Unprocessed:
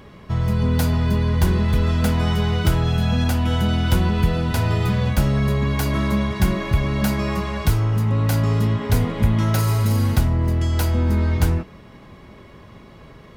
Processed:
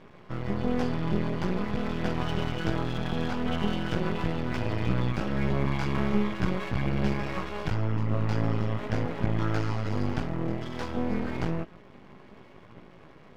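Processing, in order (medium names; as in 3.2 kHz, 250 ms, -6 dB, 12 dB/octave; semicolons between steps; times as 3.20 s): cabinet simulation 120–4700 Hz, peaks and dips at 150 Hz +3 dB, 350 Hz +4 dB, 3.9 kHz -9 dB; chorus voices 2, 0.43 Hz, delay 18 ms, depth 2.4 ms; half-wave rectifier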